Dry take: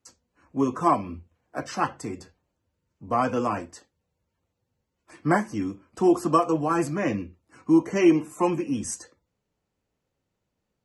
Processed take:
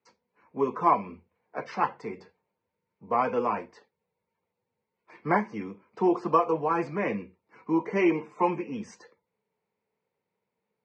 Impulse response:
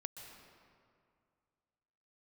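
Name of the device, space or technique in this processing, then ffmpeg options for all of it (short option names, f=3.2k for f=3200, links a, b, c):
kitchen radio: -af "highpass=160,equalizer=f=200:t=q:w=4:g=5,equalizer=f=290:t=q:w=4:g=-8,equalizer=f=440:t=q:w=4:g=10,equalizer=f=930:t=q:w=4:g=9,equalizer=f=2.2k:t=q:w=4:g=9,equalizer=f=3.1k:t=q:w=4:g=-4,lowpass=f=4.5k:w=0.5412,lowpass=f=4.5k:w=1.3066,volume=-5dB"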